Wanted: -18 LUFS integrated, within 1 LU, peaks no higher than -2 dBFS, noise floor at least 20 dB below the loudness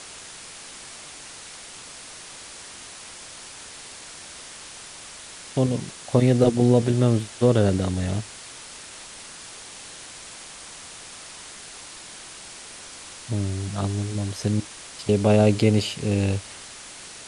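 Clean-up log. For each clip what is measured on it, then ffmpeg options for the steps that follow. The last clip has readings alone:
noise floor -42 dBFS; noise floor target -43 dBFS; loudness -22.5 LUFS; peak -4.0 dBFS; loudness target -18.0 LUFS
-> -af "afftdn=nr=6:nf=-42"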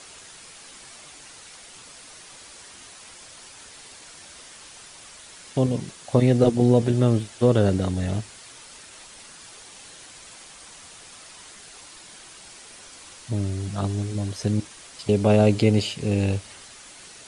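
noise floor -46 dBFS; loudness -22.5 LUFS; peak -4.0 dBFS; loudness target -18.0 LUFS
-> -af "volume=4.5dB,alimiter=limit=-2dB:level=0:latency=1"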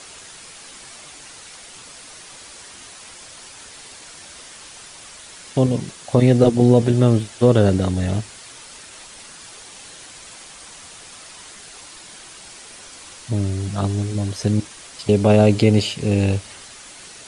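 loudness -18.5 LUFS; peak -2.0 dBFS; noise floor -41 dBFS

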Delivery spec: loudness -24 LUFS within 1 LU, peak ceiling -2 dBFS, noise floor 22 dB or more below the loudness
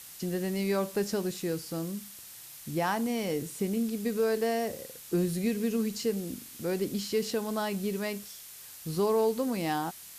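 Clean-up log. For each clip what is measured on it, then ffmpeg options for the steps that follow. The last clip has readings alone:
noise floor -48 dBFS; noise floor target -53 dBFS; loudness -31.0 LUFS; peak -17.5 dBFS; loudness target -24.0 LUFS
-> -af "afftdn=nr=6:nf=-48"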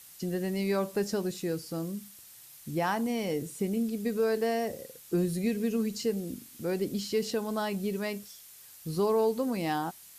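noise floor -52 dBFS; noise floor target -54 dBFS
-> -af "afftdn=nr=6:nf=-52"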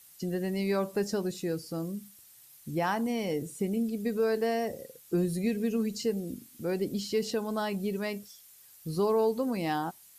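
noise floor -56 dBFS; loudness -31.5 LUFS; peak -18.0 dBFS; loudness target -24.0 LUFS
-> -af "volume=7.5dB"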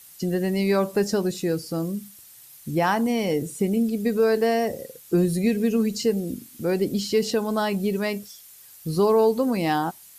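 loudness -24.0 LUFS; peak -10.5 dBFS; noise floor -48 dBFS

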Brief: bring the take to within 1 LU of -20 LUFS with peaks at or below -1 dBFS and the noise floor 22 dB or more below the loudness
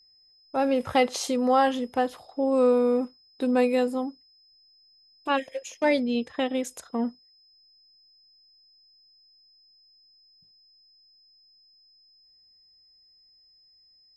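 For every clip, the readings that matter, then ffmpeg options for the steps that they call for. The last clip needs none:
steady tone 5100 Hz; tone level -57 dBFS; loudness -26.0 LUFS; peak -10.0 dBFS; loudness target -20.0 LUFS
-> -af "bandreject=f=5.1k:w=30"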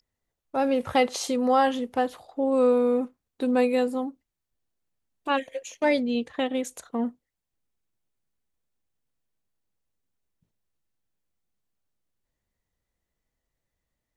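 steady tone none; loudness -25.5 LUFS; peak -10.5 dBFS; loudness target -20.0 LUFS
-> -af "volume=5.5dB"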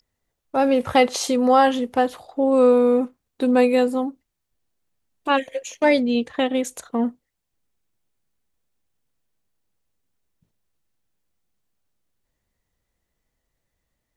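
loudness -20.0 LUFS; peak -5.0 dBFS; noise floor -79 dBFS

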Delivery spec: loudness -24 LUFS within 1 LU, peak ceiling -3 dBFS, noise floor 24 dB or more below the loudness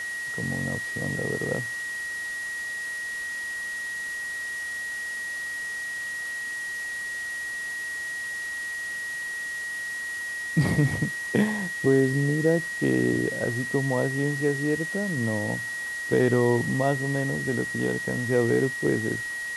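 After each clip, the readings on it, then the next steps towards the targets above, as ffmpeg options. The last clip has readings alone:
steady tone 1900 Hz; tone level -30 dBFS; noise floor -33 dBFS; noise floor target -51 dBFS; loudness -27.0 LUFS; peak -9.0 dBFS; loudness target -24.0 LUFS
-> -af "bandreject=f=1.9k:w=30"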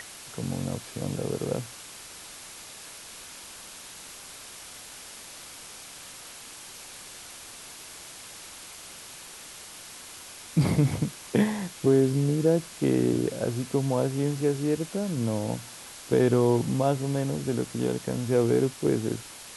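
steady tone none; noise floor -45 dBFS; noise floor target -51 dBFS
-> -af "afftdn=nr=6:nf=-45"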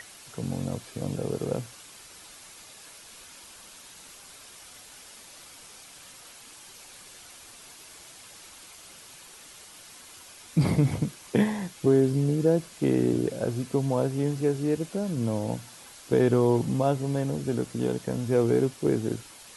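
noise floor -49 dBFS; noise floor target -51 dBFS
-> -af "afftdn=nr=6:nf=-49"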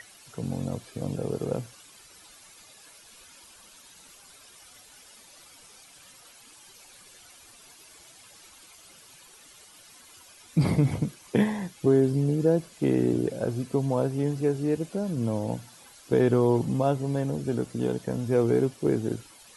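noise floor -53 dBFS; loudness -27.0 LUFS; peak -9.5 dBFS; loudness target -24.0 LUFS
-> -af "volume=3dB"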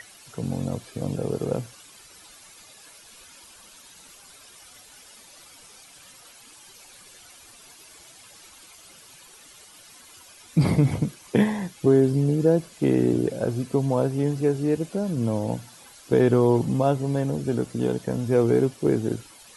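loudness -24.0 LUFS; peak -6.5 dBFS; noise floor -50 dBFS

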